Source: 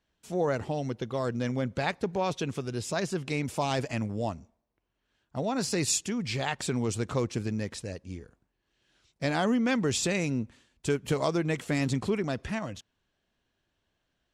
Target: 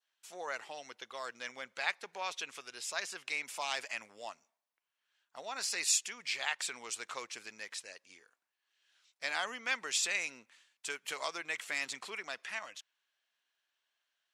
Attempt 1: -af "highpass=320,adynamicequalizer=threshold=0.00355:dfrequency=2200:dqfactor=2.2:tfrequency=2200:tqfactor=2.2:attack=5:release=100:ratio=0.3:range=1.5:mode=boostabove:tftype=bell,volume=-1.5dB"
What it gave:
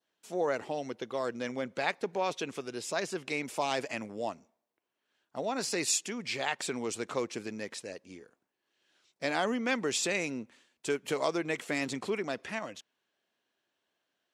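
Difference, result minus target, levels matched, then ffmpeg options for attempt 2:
250 Hz band +17.5 dB
-af "highpass=1200,adynamicequalizer=threshold=0.00355:dfrequency=2200:dqfactor=2.2:tfrequency=2200:tqfactor=2.2:attack=5:release=100:ratio=0.3:range=1.5:mode=boostabove:tftype=bell,volume=-1.5dB"

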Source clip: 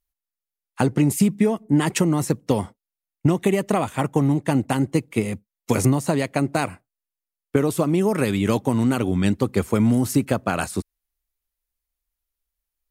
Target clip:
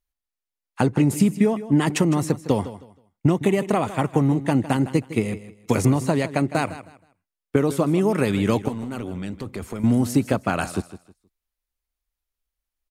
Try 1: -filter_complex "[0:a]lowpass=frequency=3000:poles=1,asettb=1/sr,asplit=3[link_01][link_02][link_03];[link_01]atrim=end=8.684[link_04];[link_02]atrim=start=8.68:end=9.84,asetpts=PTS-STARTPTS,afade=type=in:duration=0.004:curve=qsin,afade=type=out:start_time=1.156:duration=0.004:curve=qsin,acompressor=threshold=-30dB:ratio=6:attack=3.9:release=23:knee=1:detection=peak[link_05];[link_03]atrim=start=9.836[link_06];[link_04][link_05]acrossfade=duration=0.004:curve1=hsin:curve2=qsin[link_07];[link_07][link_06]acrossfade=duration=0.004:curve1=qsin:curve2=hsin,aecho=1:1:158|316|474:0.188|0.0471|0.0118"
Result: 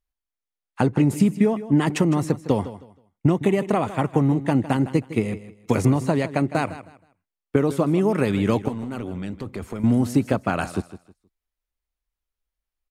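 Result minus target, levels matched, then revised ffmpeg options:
8,000 Hz band −5.0 dB
-filter_complex "[0:a]lowpass=frequency=6600:poles=1,asettb=1/sr,asplit=3[link_01][link_02][link_03];[link_01]atrim=end=8.684[link_04];[link_02]atrim=start=8.68:end=9.84,asetpts=PTS-STARTPTS,afade=type=in:duration=0.004:curve=qsin,afade=type=out:start_time=1.156:duration=0.004:curve=qsin,acompressor=threshold=-30dB:ratio=6:attack=3.9:release=23:knee=1:detection=peak[link_05];[link_03]atrim=start=9.836[link_06];[link_04][link_05]acrossfade=duration=0.004:curve1=hsin:curve2=qsin[link_07];[link_07][link_06]acrossfade=duration=0.004:curve1=qsin:curve2=hsin,aecho=1:1:158|316|474:0.188|0.0471|0.0118"

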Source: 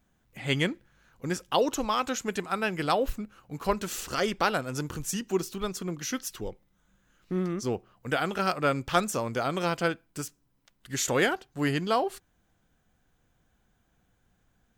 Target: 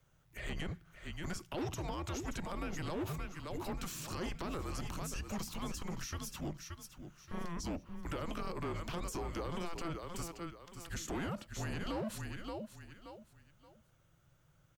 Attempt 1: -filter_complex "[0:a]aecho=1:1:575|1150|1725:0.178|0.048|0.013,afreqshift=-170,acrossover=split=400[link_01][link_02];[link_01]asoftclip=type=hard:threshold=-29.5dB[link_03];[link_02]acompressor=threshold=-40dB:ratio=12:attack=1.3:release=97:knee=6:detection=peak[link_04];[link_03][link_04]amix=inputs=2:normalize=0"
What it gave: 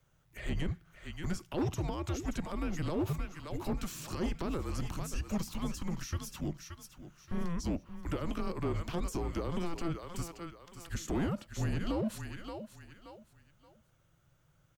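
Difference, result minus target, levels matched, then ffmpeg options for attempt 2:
hard clipping: distortion −6 dB
-filter_complex "[0:a]aecho=1:1:575|1150|1725:0.178|0.048|0.013,afreqshift=-170,acrossover=split=400[link_01][link_02];[link_01]asoftclip=type=hard:threshold=-38.5dB[link_03];[link_02]acompressor=threshold=-40dB:ratio=12:attack=1.3:release=97:knee=6:detection=peak[link_04];[link_03][link_04]amix=inputs=2:normalize=0"

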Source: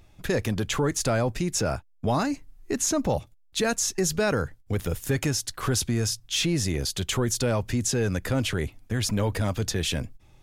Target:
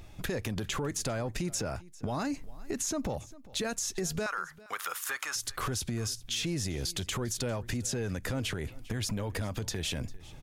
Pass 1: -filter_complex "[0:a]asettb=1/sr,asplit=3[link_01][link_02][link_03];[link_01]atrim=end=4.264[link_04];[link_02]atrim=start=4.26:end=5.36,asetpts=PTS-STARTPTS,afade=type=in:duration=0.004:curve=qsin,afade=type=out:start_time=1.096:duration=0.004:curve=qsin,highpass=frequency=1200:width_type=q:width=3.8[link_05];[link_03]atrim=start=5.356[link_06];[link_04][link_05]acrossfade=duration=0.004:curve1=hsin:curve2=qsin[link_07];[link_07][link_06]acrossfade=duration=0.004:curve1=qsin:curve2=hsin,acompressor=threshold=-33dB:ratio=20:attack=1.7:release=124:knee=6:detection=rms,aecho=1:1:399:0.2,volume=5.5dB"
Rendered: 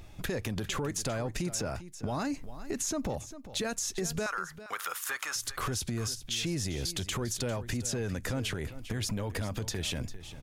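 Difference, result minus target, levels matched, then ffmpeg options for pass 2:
echo-to-direct +6.5 dB
-filter_complex "[0:a]asettb=1/sr,asplit=3[link_01][link_02][link_03];[link_01]atrim=end=4.264[link_04];[link_02]atrim=start=4.26:end=5.36,asetpts=PTS-STARTPTS,afade=type=in:duration=0.004:curve=qsin,afade=type=out:start_time=1.096:duration=0.004:curve=qsin,highpass=frequency=1200:width_type=q:width=3.8[link_05];[link_03]atrim=start=5.356[link_06];[link_04][link_05]acrossfade=duration=0.004:curve1=hsin:curve2=qsin[link_07];[link_07][link_06]acrossfade=duration=0.004:curve1=qsin:curve2=hsin,acompressor=threshold=-33dB:ratio=20:attack=1.7:release=124:knee=6:detection=rms,aecho=1:1:399:0.0944,volume=5.5dB"

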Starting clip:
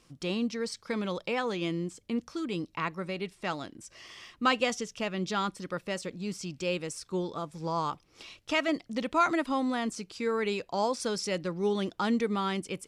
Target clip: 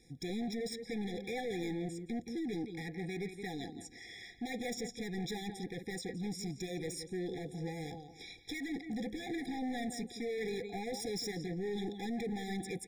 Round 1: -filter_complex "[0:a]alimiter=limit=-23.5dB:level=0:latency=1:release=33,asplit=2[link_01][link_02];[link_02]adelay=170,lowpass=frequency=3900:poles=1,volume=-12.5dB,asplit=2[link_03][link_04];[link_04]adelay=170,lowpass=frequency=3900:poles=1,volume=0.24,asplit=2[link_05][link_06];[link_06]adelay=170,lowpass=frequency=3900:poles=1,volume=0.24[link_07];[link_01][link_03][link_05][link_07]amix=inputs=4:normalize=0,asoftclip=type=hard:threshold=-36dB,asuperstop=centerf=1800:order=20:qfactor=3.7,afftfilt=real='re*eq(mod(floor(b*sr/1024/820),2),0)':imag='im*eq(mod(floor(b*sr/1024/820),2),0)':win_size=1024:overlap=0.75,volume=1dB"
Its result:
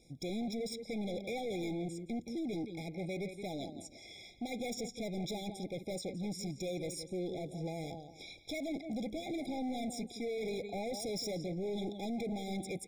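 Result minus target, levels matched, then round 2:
2,000 Hz band −4.5 dB
-filter_complex "[0:a]alimiter=limit=-23.5dB:level=0:latency=1:release=33,asplit=2[link_01][link_02];[link_02]adelay=170,lowpass=frequency=3900:poles=1,volume=-12.5dB,asplit=2[link_03][link_04];[link_04]adelay=170,lowpass=frequency=3900:poles=1,volume=0.24,asplit=2[link_05][link_06];[link_06]adelay=170,lowpass=frequency=3900:poles=1,volume=0.24[link_07];[link_01][link_03][link_05][link_07]amix=inputs=4:normalize=0,asoftclip=type=hard:threshold=-36dB,asuperstop=centerf=600:order=20:qfactor=3.7,afftfilt=real='re*eq(mod(floor(b*sr/1024/820),2),0)':imag='im*eq(mod(floor(b*sr/1024/820),2),0)':win_size=1024:overlap=0.75,volume=1dB"

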